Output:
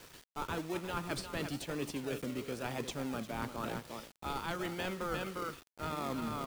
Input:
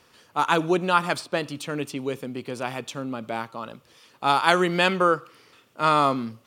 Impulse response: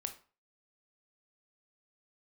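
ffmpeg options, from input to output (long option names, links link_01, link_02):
-filter_complex "[0:a]acrossover=split=330|970[link_01][link_02][link_03];[link_01]acompressor=threshold=-35dB:ratio=4[link_04];[link_02]acompressor=threshold=-29dB:ratio=4[link_05];[link_03]acompressor=threshold=-25dB:ratio=4[link_06];[link_04][link_05][link_06]amix=inputs=3:normalize=0,aecho=1:1:353:0.224,asplit=2[link_07][link_08];[link_08]acrusher=samples=41:mix=1:aa=0.000001:lfo=1:lforange=24.6:lforate=0.96,volume=-4dB[link_09];[link_07][link_09]amix=inputs=2:normalize=0,bandreject=frequency=1100:width=24,areverse,acompressor=threshold=-36dB:ratio=8,areverse,acrusher=bits=8:mix=0:aa=0.000001,volume=1dB"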